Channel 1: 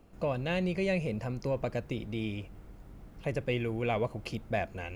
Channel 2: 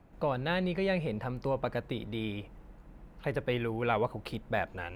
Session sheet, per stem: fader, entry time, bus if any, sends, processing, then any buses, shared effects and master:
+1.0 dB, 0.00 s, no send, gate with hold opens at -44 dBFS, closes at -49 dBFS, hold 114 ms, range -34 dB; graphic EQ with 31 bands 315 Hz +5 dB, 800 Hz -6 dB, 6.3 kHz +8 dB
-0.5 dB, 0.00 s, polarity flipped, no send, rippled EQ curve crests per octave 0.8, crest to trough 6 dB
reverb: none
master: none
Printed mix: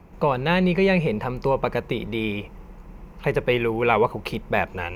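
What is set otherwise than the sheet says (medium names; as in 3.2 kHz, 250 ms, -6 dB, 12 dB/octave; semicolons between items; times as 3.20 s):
stem 1 +1.0 dB -> -9.0 dB; stem 2 -0.5 dB -> +10.0 dB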